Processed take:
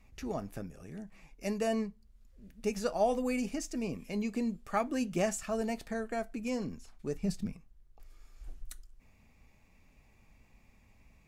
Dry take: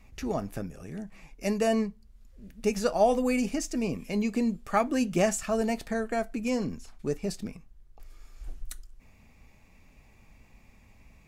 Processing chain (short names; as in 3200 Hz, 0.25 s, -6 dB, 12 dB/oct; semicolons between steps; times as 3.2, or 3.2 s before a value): 7.15–7.55 resonant low shelf 240 Hz +7 dB, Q 1.5; gain -6 dB